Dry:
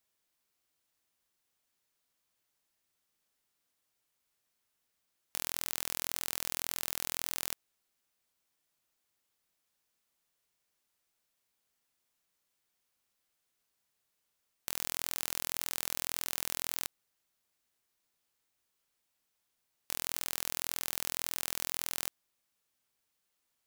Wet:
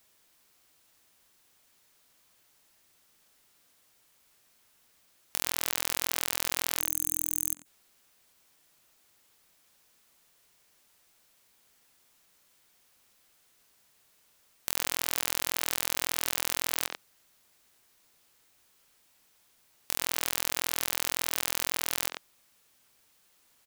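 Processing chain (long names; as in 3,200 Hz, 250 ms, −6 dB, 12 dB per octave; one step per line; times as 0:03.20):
gain on a spectral selection 0:06.80–0:07.66, 310–6,300 Hz −21 dB
far-end echo of a speakerphone 90 ms, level −10 dB
boost into a limiter +16 dB
level −1 dB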